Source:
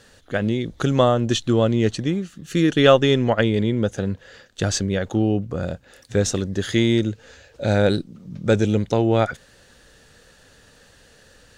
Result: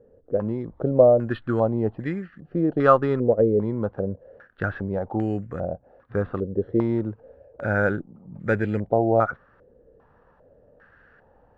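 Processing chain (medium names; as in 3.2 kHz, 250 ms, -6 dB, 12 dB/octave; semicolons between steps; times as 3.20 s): careless resampling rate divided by 6×, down filtered, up hold; step-sequenced low-pass 2.5 Hz 480–1800 Hz; trim -6 dB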